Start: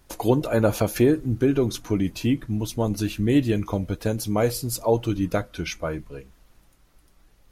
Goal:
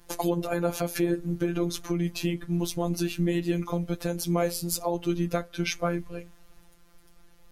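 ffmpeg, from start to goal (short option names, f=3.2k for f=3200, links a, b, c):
-af "alimiter=limit=-17.5dB:level=0:latency=1:release=349,afftfilt=real='hypot(re,im)*cos(PI*b)':imag='0':win_size=1024:overlap=0.75,volume=5dB"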